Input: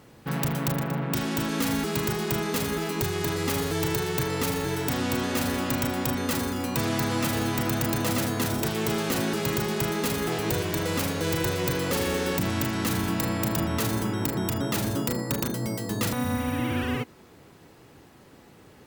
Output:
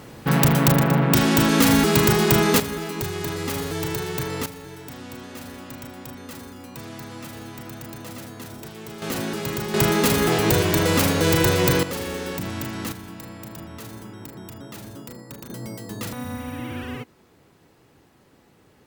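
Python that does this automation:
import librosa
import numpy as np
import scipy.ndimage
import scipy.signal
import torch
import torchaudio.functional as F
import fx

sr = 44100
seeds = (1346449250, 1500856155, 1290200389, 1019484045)

y = fx.gain(x, sr, db=fx.steps((0.0, 10.0), (2.6, -0.5), (4.46, -11.0), (9.02, -1.0), (9.74, 8.0), (11.83, -3.0), (12.92, -11.5), (15.5, -4.5)))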